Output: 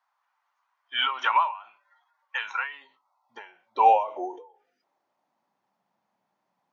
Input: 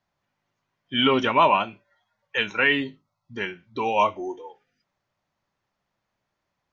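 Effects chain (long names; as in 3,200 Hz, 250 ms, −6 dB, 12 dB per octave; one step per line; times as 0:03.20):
high-pass filter sweep 1,200 Hz → 200 Hz, 0:02.59–0:05.71
parametric band 840 Hz +12 dB 0.88 octaves
every ending faded ahead of time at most 120 dB per second
level −4.5 dB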